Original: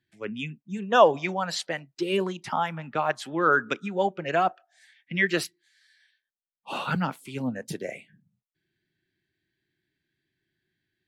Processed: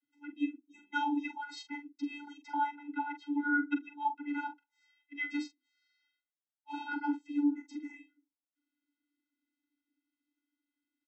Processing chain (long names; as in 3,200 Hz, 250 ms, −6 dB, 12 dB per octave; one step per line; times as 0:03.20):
0:02.92–0:04.36: low-pass filter 3,600 Hz 12 dB per octave
channel vocoder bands 32, square 290 Hz
double-tracking delay 43 ms −10 dB
level −7 dB